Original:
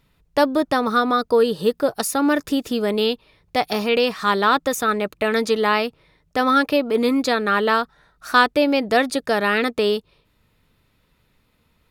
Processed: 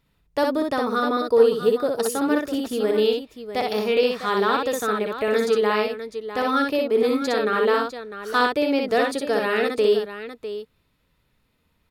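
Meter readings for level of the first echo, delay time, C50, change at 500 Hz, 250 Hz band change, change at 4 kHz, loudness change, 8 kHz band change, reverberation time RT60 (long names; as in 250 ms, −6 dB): −3.0 dB, 61 ms, no reverb audible, +0.5 dB, −3.5 dB, −4.5 dB, −2.0 dB, −4.5 dB, no reverb audible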